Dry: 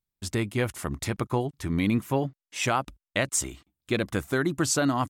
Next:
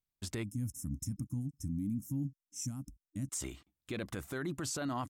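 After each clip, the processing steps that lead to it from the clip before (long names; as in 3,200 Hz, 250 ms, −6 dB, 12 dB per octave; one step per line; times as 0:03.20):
gain on a spectral selection 0:00.43–0:03.31, 310–5,200 Hz −30 dB
brickwall limiter −23.5 dBFS, peak gain reduction 10.5 dB
level −5 dB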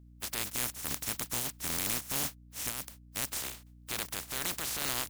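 compressing power law on the bin magnitudes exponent 0.15
mains hum 60 Hz, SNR 18 dB
level +3 dB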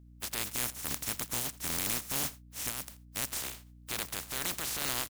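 single-tap delay 83 ms −20.5 dB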